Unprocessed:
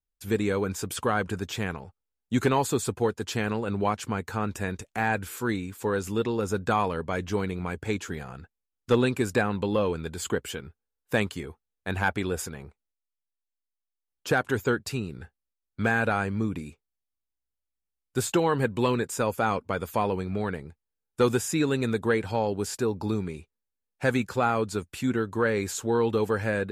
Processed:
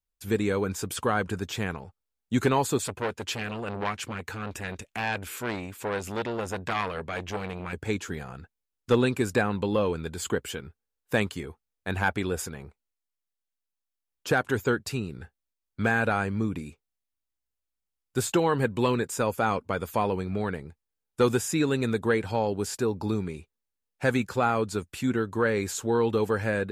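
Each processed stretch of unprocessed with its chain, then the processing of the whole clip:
0:02.78–0:07.73: parametric band 2,500 Hz +6 dB 0.97 octaves + saturating transformer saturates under 2,000 Hz
whole clip: no processing

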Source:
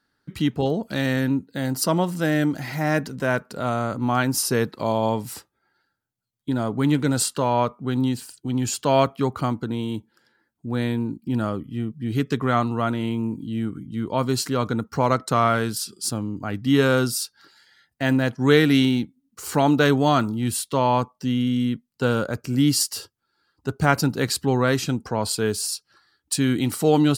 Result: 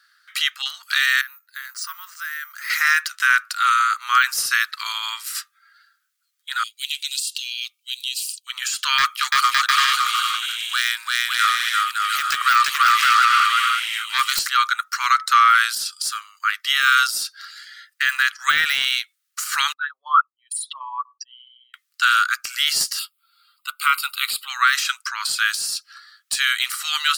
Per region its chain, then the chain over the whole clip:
0:01.21–0:02.70: parametric band 3,200 Hz −11 dB 1.4 octaves + downward compressor 2 to 1, threshold −36 dBFS + bad sample-rate conversion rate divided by 3×, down filtered, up hold
0:06.63–0:08.47: Chebyshev high-pass filter 2,600 Hz, order 5 + downward compressor 12 to 1, threshold −33 dBFS
0:08.98–0:14.39: phase distortion by the signal itself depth 0.15 ms + high-shelf EQ 3,800 Hz +9 dB + bouncing-ball delay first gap 340 ms, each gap 0.65×, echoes 6, each echo −2 dB
0:19.72–0:21.74: spectral envelope exaggerated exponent 3 + notch comb filter 410 Hz
0:22.99–0:24.50: high-shelf EQ 6,600 Hz +7 dB + phaser with its sweep stopped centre 1,700 Hz, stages 6
whole clip: Chebyshev high-pass filter 1,200 Hz, order 6; de-essing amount 75%; boost into a limiter +20.5 dB; level −5 dB

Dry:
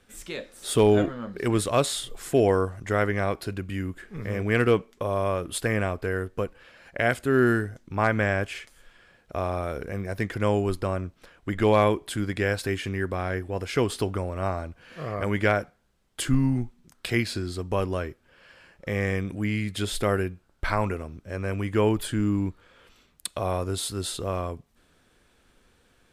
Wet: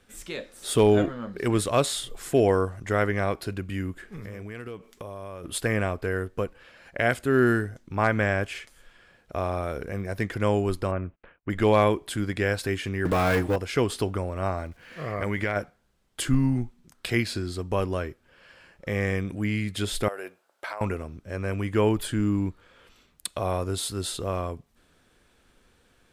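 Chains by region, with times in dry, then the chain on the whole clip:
0:04.12–0:05.44: high-shelf EQ 6,200 Hz +5.5 dB + downward compressor 8 to 1, threshold −34 dBFS + one half of a high-frequency compander encoder only
0:10.91–0:11.50: Butterworth low-pass 2,800 Hz + noise gate −55 dBFS, range −31 dB
0:13.05–0:13.56: gap after every zero crossing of 0.052 ms + comb filter 6.5 ms, depth 56% + leveller curve on the samples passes 3
0:14.58–0:15.55: parametric band 2,000 Hz +6.5 dB 0.34 octaves + downward compressor, threshold −22 dBFS + surface crackle 430 per second −53 dBFS
0:20.08–0:20.81: high-pass with resonance 590 Hz, resonance Q 1.7 + high-shelf EQ 8,700 Hz +5 dB + downward compressor 12 to 1, threshold −30 dBFS
whole clip: no processing

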